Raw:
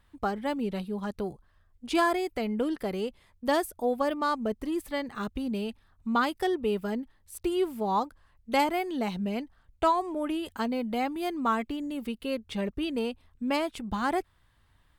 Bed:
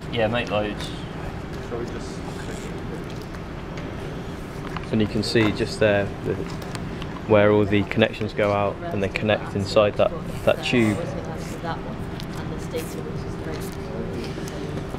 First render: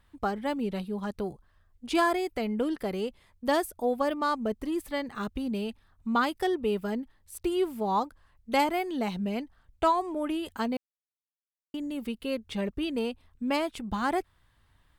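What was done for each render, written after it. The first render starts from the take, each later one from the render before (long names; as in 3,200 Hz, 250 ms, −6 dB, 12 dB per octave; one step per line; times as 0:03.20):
0:10.77–0:11.74: silence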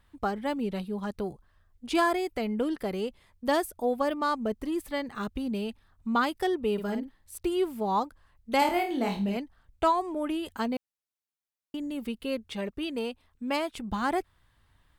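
0:06.73–0:07.37: double-tracking delay 50 ms −7.5 dB
0:08.59–0:09.37: flutter between parallel walls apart 4.4 metres, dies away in 0.33 s
0:12.47–0:13.74: low-shelf EQ 220 Hz −7.5 dB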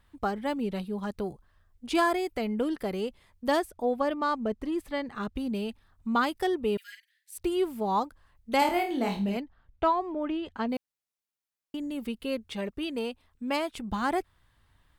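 0:03.59–0:05.36: high-shelf EQ 7,500 Hz −12 dB
0:06.77–0:07.38: Butterworth high-pass 1,600 Hz 72 dB per octave
0:09.40–0:10.69: high-frequency loss of the air 180 metres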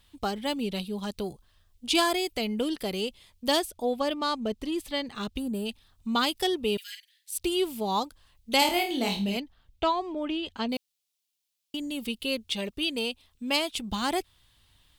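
0:05.39–0:05.66: gain on a spectral selection 1,900–6,800 Hz −16 dB
high shelf with overshoot 2,300 Hz +9.5 dB, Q 1.5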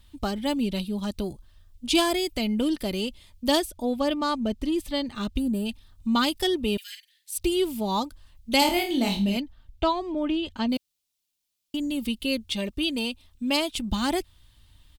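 bass and treble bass +9 dB, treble +1 dB
comb filter 3.3 ms, depth 36%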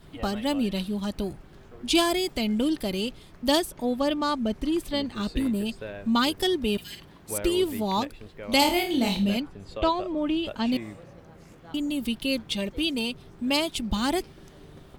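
mix in bed −19 dB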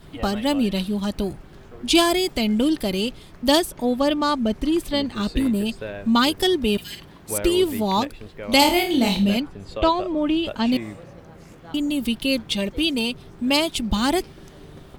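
level +5 dB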